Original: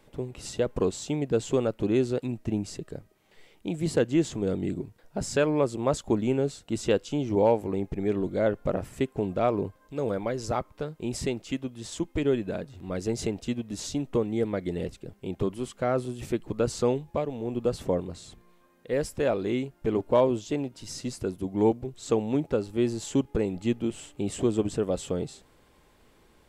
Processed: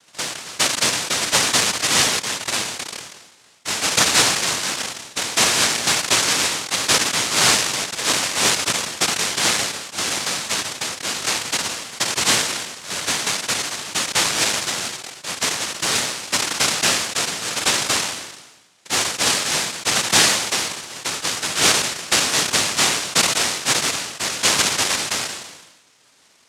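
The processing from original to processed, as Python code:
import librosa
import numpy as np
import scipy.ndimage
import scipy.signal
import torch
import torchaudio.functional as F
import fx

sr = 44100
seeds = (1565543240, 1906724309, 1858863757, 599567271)

y = fx.noise_vocoder(x, sr, seeds[0], bands=1)
y = fx.sustainer(y, sr, db_per_s=52.0)
y = y * librosa.db_to_amplitude(5.5)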